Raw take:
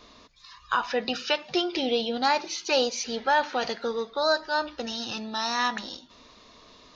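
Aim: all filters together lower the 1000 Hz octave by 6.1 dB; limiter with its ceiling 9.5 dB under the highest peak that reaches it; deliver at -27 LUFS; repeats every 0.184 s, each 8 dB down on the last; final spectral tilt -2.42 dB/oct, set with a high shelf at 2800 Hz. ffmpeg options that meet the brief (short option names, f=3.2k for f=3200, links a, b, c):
-af "equalizer=f=1k:t=o:g=-7,highshelf=f=2.8k:g=-4.5,alimiter=level_in=0.5dB:limit=-24dB:level=0:latency=1,volume=-0.5dB,aecho=1:1:184|368|552|736|920:0.398|0.159|0.0637|0.0255|0.0102,volume=7dB"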